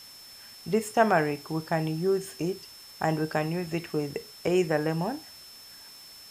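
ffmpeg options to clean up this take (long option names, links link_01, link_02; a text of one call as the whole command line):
ffmpeg -i in.wav -af "adeclick=threshold=4,bandreject=frequency=5300:width=30,afftdn=noise_reduction=25:noise_floor=-48" out.wav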